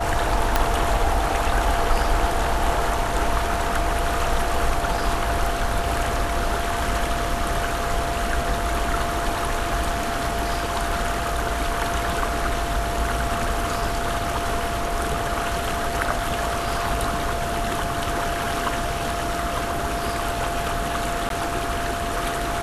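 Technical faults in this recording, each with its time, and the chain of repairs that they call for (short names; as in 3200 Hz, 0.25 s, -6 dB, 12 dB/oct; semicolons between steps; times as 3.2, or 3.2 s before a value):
tone 690 Hz -28 dBFS
0.56 pop -3 dBFS
21.29–21.3 gap 12 ms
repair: de-click; notch 690 Hz, Q 30; interpolate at 21.29, 12 ms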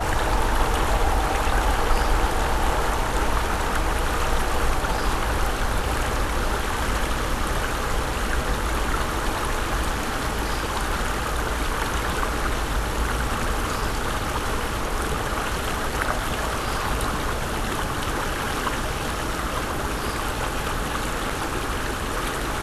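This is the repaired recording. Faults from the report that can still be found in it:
0.56 pop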